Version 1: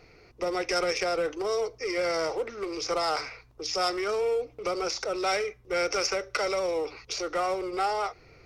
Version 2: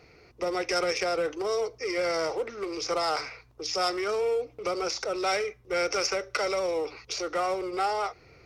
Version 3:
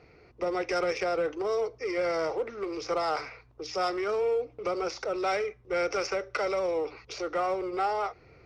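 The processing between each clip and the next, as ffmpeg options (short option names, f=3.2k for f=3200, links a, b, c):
-af "highpass=45"
-af "aemphasis=mode=reproduction:type=75kf"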